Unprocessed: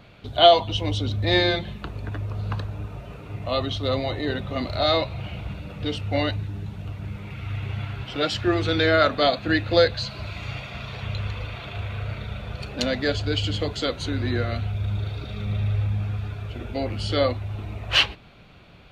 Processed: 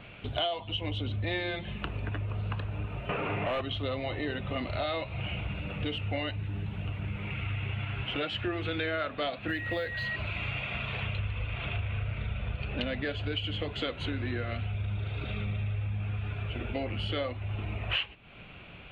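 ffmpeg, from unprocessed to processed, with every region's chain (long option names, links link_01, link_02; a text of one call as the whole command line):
ffmpeg -i in.wav -filter_complex "[0:a]asettb=1/sr,asplit=3[link_01][link_02][link_03];[link_01]atrim=end=3.094[link_04];[link_02]atrim=start=3.09:end=3.61,asetpts=PTS-STARTPTS,afade=type=in:duration=0.004:curve=qsin,afade=type=out:start_time=0.516:duration=0.004:curve=qsin,highshelf=frequency=4700:gain=-9,bandreject=frequency=60:width_type=h:width=6,bandreject=frequency=120:width_type=h:width=6,bandreject=frequency=180:width_type=h:width=6,asplit=2[link_05][link_06];[link_06]highpass=frequency=720:poles=1,volume=31dB,asoftclip=type=tanh:threshold=-13.5dB[link_07];[link_05][link_07]amix=inputs=2:normalize=0,lowpass=frequency=1300:poles=1,volume=-6dB[link_08];[link_03]atrim=start=3.606[link_09];[link_04][link_08]acrossfade=duration=0.004:curve1=hsin:curve2=qsin[link_10];[link_10][link_09]acrossfade=duration=0.004:curve1=qsin:curve2=hsin,asettb=1/sr,asplit=3[link_11][link_12][link_13];[link_11]atrim=end=9.484[link_14];[link_12]atrim=start=9.48:end=10.16,asetpts=PTS-STARTPTS,afade=type=in:duration=0.004:curve=qsin,afade=type=out:start_time=0.676:duration=0.004:curve=qsin,acrusher=bits=5:mode=log:mix=0:aa=0.000001,acompressor=threshold=-18dB:ratio=2.5:attack=3.2:release=140:knee=1:detection=peak,aeval=exprs='val(0)+0.0316*sin(2*PI*1900*n/s)':channel_layout=same[link_15];[link_13]atrim=start=10.156[link_16];[link_14][link_15]acrossfade=duration=0.004:curve1=hsin:curve2=qsin[link_17];[link_17][link_16]acrossfade=duration=0.004:curve1=qsin:curve2=hsin,asettb=1/sr,asplit=3[link_18][link_19][link_20];[link_18]atrim=end=11.184[link_21];[link_19]atrim=start=11.18:end=13.05,asetpts=PTS-STARTPTS,afade=type=in:duration=0.004:curve=qsin,afade=type=out:start_time=1.866:duration=0.004:curve=qsin,lowpass=frequency=5000:width=0.5412,lowpass=frequency=5000:width=1.3066,lowshelf=frequency=110:gain=10[link_22];[link_20]atrim=start=13.046[link_23];[link_21][link_22]acrossfade=duration=0.004:curve1=hsin:curve2=qsin[link_24];[link_24][link_23]acrossfade=duration=0.004:curve1=qsin:curve2=hsin,highshelf=frequency=3900:width_type=q:width=3:gain=-11.5,acompressor=threshold=-30dB:ratio=6" out.wav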